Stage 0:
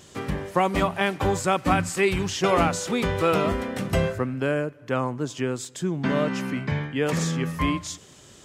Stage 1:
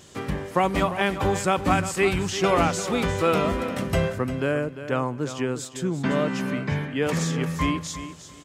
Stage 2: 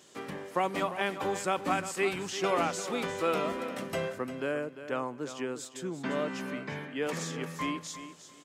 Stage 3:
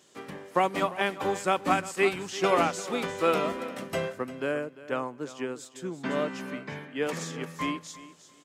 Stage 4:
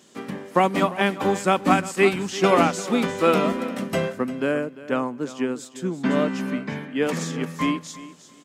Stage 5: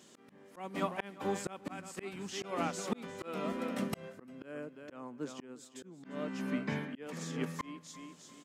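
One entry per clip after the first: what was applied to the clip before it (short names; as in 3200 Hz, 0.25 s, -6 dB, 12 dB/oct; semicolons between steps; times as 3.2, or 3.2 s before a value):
feedback echo 0.348 s, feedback 21%, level -12 dB
HPF 240 Hz 12 dB/oct; gain -7 dB
upward expander 1.5:1, over -42 dBFS; gain +5.5 dB
bell 220 Hz +9.5 dB 0.68 oct; gain +5 dB
auto swell 0.695 s; gain -5 dB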